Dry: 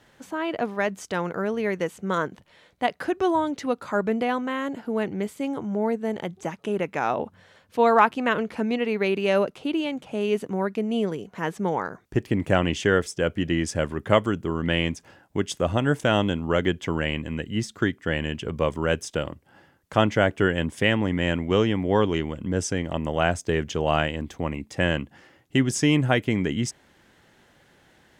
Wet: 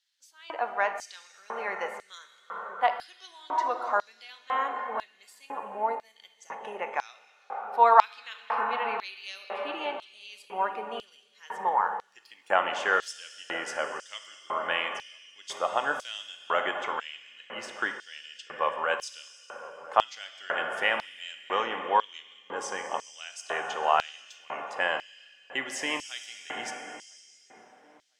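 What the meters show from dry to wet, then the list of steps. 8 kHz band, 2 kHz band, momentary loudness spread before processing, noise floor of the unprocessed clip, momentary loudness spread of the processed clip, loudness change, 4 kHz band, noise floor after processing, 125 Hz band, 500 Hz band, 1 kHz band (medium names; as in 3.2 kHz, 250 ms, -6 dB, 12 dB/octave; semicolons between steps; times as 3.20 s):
-6.5 dB, -3.0 dB, 8 LU, -59 dBFS, 17 LU, -4.5 dB, -4.5 dB, -61 dBFS, under -30 dB, -9.5 dB, +1.0 dB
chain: treble shelf 3.2 kHz -9.5 dB; plate-style reverb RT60 3.9 s, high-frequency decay 0.95×, DRR 4 dB; spectral noise reduction 8 dB; on a send: feedback echo behind a low-pass 1004 ms, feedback 33%, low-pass 900 Hz, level -16 dB; on the sum: LFO high-pass square 1 Hz 920–4400 Hz; trim -1 dB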